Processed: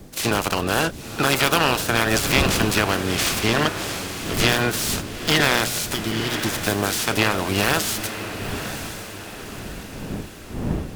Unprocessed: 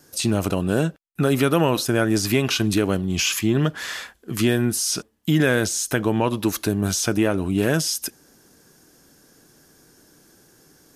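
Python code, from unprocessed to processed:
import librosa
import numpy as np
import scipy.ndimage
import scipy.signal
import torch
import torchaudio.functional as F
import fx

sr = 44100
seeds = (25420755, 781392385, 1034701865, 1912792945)

y = fx.spec_clip(x, sr, under_db=22)
y = fx.dmg_wind(y, sr, seeds[0], corner_hz=260.0, level_db=-33.0)
y = fx.spec_repair(y, sr, seeds[1], start_s=5.96, length_s=0.52, low_hz=410.0, high_hz=2900.0, source='after')
y = fx.echo_diffused(y, sr, ms=954, feedback_pct=49, wet_db=-9.5)
y = fx.noise_mod_delay(y, sr, seeds[2], noise_hz=1500.0, depth_ms=0.035)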